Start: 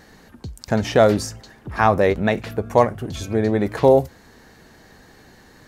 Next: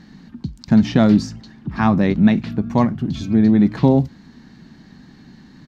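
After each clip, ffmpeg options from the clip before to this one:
ffmpeg -i in.wav -af "firequalizer=gain_entry='entry(100,0);entry(150,11);entry(240,11);entry(460,-10);entry(930,-3);entry(1500,-4);entry(4200,1);entry(9500,-18)':delay=0.05:min_phase=1" out.wav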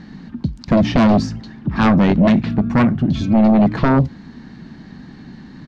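ffmpeg -i in.wav -af "aemphasis=mode=reproduction:type=50fm,aeval=exprs='0.794*sin(PI/2*2.82*val(0)/0.794)':channel_layout=same,volume=-6.5dB" out.wav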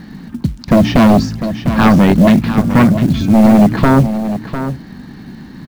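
ffmpeg -i in.wav -af "acrusher=bits=7:mode=log:mix=0:aa=0.000001,aecho=1:1:701:0.299,volume=4.5dB" out.wav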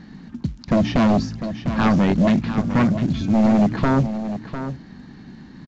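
ffmpeg -i in.wav -af "aresample=16000,aresample=44100,volume=-8.5dB" out.wav

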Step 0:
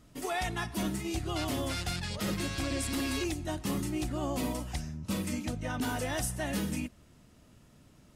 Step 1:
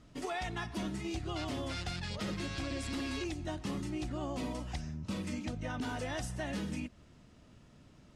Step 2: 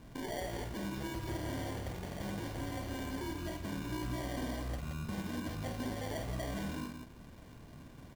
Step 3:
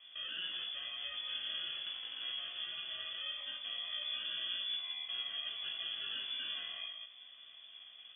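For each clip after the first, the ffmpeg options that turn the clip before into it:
ffmpeg -i in.wav -af "lowpass=6100,acompressor=threshold=-36dB:ratio=2.5" out.wav
ffmpeg -i in.wav -filter_complex "[0:a]alimiter=level_in=13dB:limit=-24dB:level=0:latency=1:release=233,volume=-13dB,acrusher=samples=34:mix=1:aa=0.000001,asplit=2[link_01][link_02];[link_02]aecho=0:1:49.56|174.9:0.447|0.501[link_03];[link_01][link_03]amix=inputs=2:normalize=0,volume=5dB" out.wav
ffmpeg -i in.wav -af "flanger=delay=15:depth=4:speed=0.4,lowpass=frequency=3000:width_type=q:width=0.5098,lowpass=frequency=3000:width_type=q:width=0.6013,lowpass=frequency=3000:width_type=q:width=0.9,lowpass=frequency=3000:width_type=q:width=2.563,afreqshift=-3500" out.wav

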